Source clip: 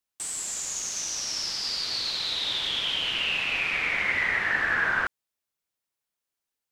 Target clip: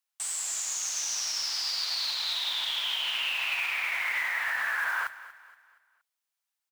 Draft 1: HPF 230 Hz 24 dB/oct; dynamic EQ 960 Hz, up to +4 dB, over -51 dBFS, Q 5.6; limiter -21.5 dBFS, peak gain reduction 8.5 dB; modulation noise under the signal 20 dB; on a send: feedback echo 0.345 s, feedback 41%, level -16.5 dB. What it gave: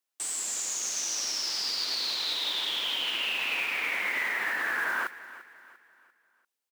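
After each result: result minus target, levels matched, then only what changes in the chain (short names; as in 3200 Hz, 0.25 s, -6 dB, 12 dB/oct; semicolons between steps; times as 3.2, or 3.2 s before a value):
250 Hz band +15.0 dB; echo 0.109 s late
change: HPF 710 Hz 24 dB/oct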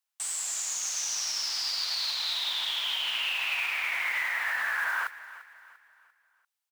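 echo 0.109 s late
change: feedback echo 0.236 s, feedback 41%, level -16.5 dB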